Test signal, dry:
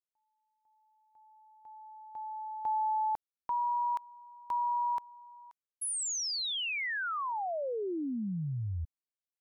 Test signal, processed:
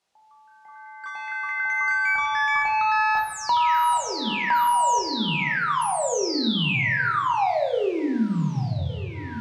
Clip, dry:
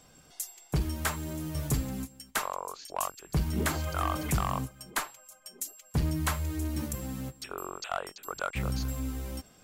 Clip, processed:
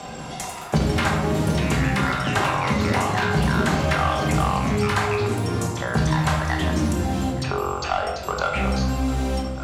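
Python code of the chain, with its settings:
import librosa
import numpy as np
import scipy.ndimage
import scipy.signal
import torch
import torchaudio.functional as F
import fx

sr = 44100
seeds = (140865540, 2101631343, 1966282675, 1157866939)

y = scipy.signal.sosfilt(scipy.signal.butter(2, 49.0, 'highpass', fs=sr, output='sos'), x)
y = fx.peak_eq(y, sr, hz=770.0, db=7.0, octaves=0.51)
y = fx.echo_filtered(y, sr, ms=1162, feedback_pct=58, hz=2200.0, wet_db=-23)
y = fx.leveller(y, sr, passes=1)
y = fx.echo_pitch(y, sr, ms=195, semitones=5, count=3, db_per_echo=-3.0)
y = scipy.signal.sosfilt(scipy.signal.butter(2, 6400.0, 'lowpass', fs=sr, output='sos'), y)
y = fx.low_shelf(y, sr, hz=72.0, db=-7.5)
y = fx.room_shoebox(y, sr, seeds[0], volume_m3=260.0, walls='mixed', distance_m=1.2)
y = fx.band_squash(y, sr, depth_pct=70)
y = y * 10.0 ** (2.0 / 20.0)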